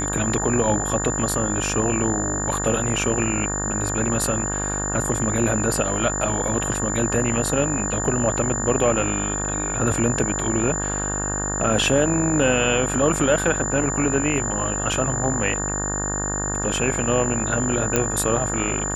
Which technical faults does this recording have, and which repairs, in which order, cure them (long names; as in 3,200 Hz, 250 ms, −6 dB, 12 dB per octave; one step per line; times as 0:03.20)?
mains buzz 50 Hz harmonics 37 −28 dBFS
whistle 7,100 Hz −26 dBFS
0:17.96: click −4 dBFS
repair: click removal
hum removal 50 Hz, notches 37
notch filter 7,100 Hz, Q 30